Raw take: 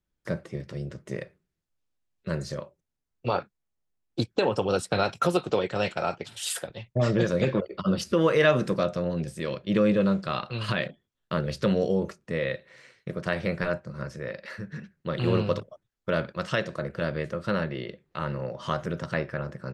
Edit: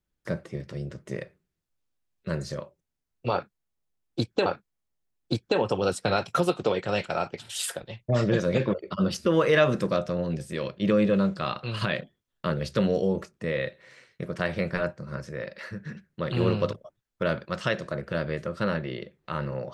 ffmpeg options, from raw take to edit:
ffmpeg -i in.wav -filter_complex "[0:a]asplit=2[link_01][link_02];[link_01]atrim=end=4.462[link_03];[link_02]atrim=start=3.328[link_04];[link_03][link_04]acrossfade=duration=0.004:curve1=hsin:curve2=hsin" out.wav

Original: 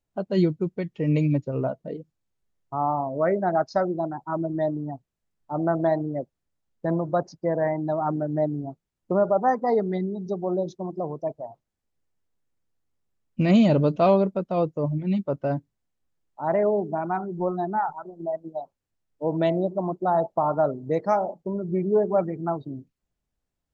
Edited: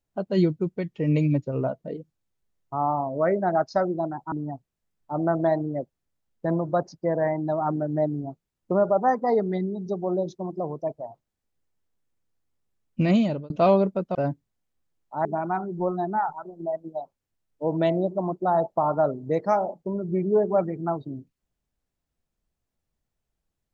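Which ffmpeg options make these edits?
ffmpeg -i in.wav -filter_complex "[0:a]asplit=5[link_01][link_02][link_03][link_04][link_05];[link_01]atrim=end=4.322[link_06];[link_02]atrim=start=4.718:end=13.9,asetpts=PTS-STARTPTS,afade=type=out:start_time=8.712:duration=0.47[link_07];[link_03]atrim=start=13.9:end=14.552,asetpts=PTS-STARTPTS,afade=type=in:duration=0.004:curve=hsin[link_08];[link_04]atrim=start=15.408:end=16.512[link_09];[link_05]atrim=start=16.848[link_10];[link_07][link_08]concat=n=2:v=0:a=1[link_11];[link_06][link_11]acrossfade=duration=0.004:curve1=hsin:curve2=hsin[link_12];[link_12][link_09]acrossfade=duration=0.004:curve1=hsin:curve2=hsin[link_13];[link_13][link_10]acrossfade=duration=0.004:curve1=hsin:curve2=hsin" out.wav

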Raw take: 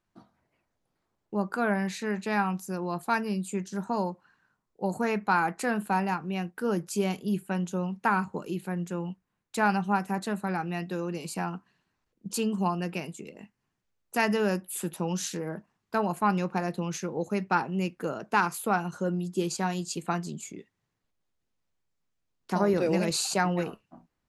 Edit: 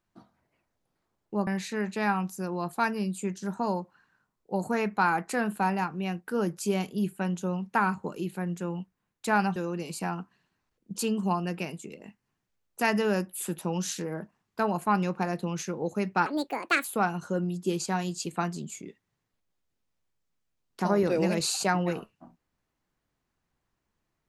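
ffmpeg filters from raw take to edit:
ffmpeg -i in.wav -filter_complex "[0:a]asplit=5[link_01][link_02][link_03][link_04][link_05];[link_01]atrim=end=1.472[link_06];[link_02]atrim=start=1.768:end=9.862[link_07];[link_03]atrim=start=10.908:end=17.614[link_08];[link_04]atrim=start=17.61:end=18.55,asetpts=PTS-STARTPTS,asetrate=71001,aresample=44100[link_09];[link_05]atrim=start=18.546[link_10];[link_06][link_07]acrossfade=duration=0.004:curve1=hsin:curve2=hsin[link_11];[link_11][link_08]acrossfade=duration=0.004:curve1=hsin:curve2=hsin[link_12];[link_12][link_09]acrossfade=duration=0.004:curve1=hsin:curve2=hsin[link_13];[link_13][link_10]acrossfade=duration=0.004:curve1=hsin:curve2=hsin" out.wav

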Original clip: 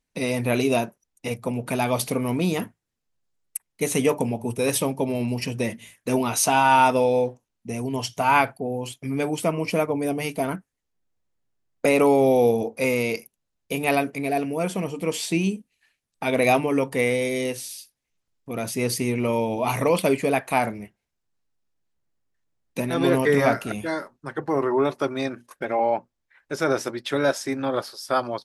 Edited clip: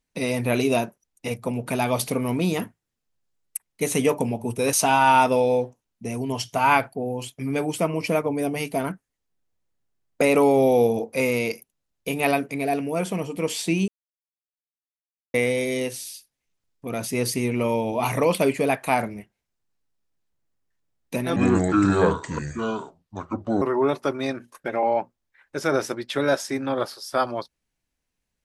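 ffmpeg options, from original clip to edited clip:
ffmpeg -i in.wav -filter_complex "[0:a]asplit=6[link_01][link_02][link_03][link_04][link_05][link_06];[link_01]atrim=end=4.732[link_07];[link_02]atrim=start=6.368:end=15.52,asetpts=PTS-STARTPTS,afade=type=out:start_time=9.148:duration=0.004:curve=hsin[link_08];[link_03]atrim=start=15.52:end=16.98,asetpts=PTS-STARTPTS,volume=0[link_09];[link_04]atrim=start=16.98:end=23.004,asetpts=PTS-STARTPTS,afade=type=in:duration=0.004:curve=hsin[link_10];[link_05]atrim=start=23:end=24.58,asetpts=PTS-STARTPTS,asetrate=30870,aresample=44100[link_11];[link_06]atrim=start=24.576[link_12];[link_08][link_09][link_10]concat=n=3:v=0:a=1[link_13];[link_07][link_13]acrossfade=duration=0.004:curve1=hsin:curve2=hsin[link_14];[link_14][link_11]acrossfade=duration=0.004:curve1=hsin:curve2=hsin[link_15];[link_15][link_12]acrossfade=duration=0.004:curve1=hsin:curve2=hsin" out.wav

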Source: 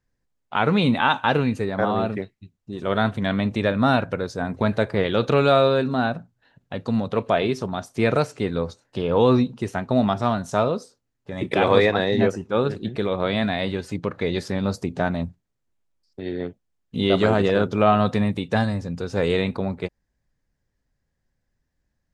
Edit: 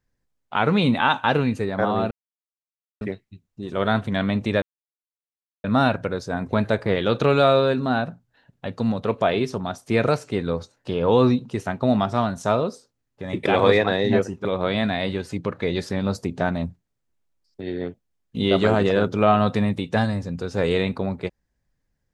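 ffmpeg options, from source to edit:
ffmpeg -i in.wav -filter_complex "[0:a]asplit=4[link_01][link_02][link_03][link_04];[link_01]atrim=end=2.11,asetpts=PTS-STARTPTS,afade=type=out:start_time=2.106:duration=0.004:curve=hsin,apad=pad_dur=0.9[link_05];[link_02]atrim=start=2.11:end=3.72,asetpts=PTS-STARTPTS,afade=type=in:duration=0.004:curve=hsin,afade=type=out:start_time=1.606:duration=0.004:curve=hsin,apad=pad_dur=1.02[link_06];[link_03]atrim=start=3.72:end=12.532,asetpts=PTS-STARTPTS,afade=type=in:duration=0.004:curve=hsin[link_07];[link_04]atrim=start=13.038[link_08];[link_05][link_06][link_07]concat=n=3:v=0:a=1[link_09];[link_09][link_08]acrossfade=duration=0.004:curve1=hsin:curve2=hsin" out.wav

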